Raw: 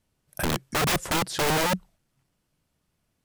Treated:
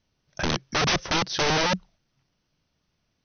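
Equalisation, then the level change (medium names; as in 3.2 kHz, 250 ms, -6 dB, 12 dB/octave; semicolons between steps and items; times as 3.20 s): brick-wall FIR low-pass 6.3 kHz; treble shelf 3.5 kHz +7.5 dB; 0.0 dB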